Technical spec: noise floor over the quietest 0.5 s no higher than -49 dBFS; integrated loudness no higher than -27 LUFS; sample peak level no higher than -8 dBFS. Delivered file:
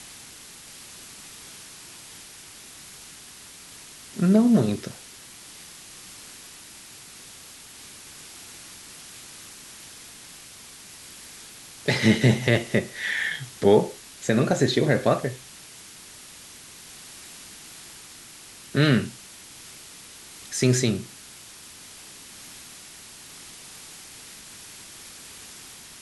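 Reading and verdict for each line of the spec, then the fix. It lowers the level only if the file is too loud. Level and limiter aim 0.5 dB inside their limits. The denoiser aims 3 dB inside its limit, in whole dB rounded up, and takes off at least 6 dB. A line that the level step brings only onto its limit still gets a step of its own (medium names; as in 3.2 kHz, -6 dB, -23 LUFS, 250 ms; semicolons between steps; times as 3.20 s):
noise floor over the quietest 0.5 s -45 dBFS: fail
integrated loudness -22.5 LUFS: fail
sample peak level -5.5 dBFS: fail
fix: trim -5 dB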